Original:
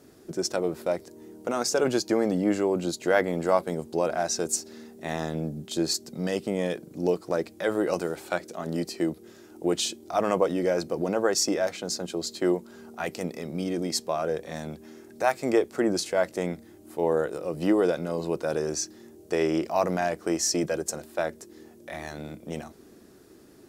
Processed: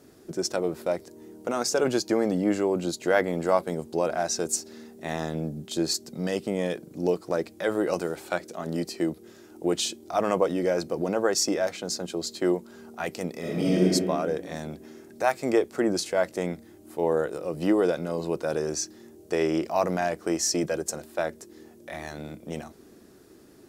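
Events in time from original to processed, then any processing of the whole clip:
13.39–13.82 s: reverb throw, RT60 1.9 s, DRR -7 dB

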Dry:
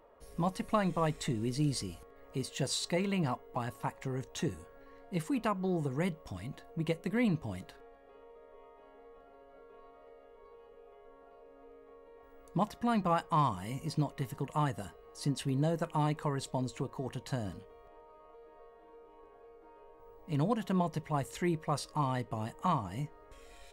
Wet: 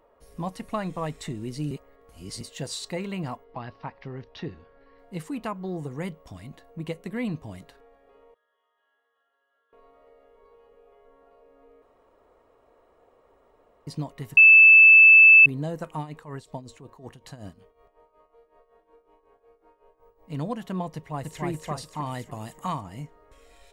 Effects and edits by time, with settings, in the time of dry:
1.71–2.41 s: reverse
3.44–4.99 s: elliptic low-pass 5.1 kHz
8.34–9.73 s: two resonant band-passes 2.3 kHz, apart 0.93 oct
11.82–13.87 s: room tone
14.37–15.46 s: bleep 2.63 kHz -8.5 dBFS
15.98–20.30 s: tremolo 5.4 Hz, depth 77%
20.95–21.43 s: echo throw 290 ms, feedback 45%, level -1 dB
22.06–22.81 s: treble shelf 4.4 kHz +10 dB

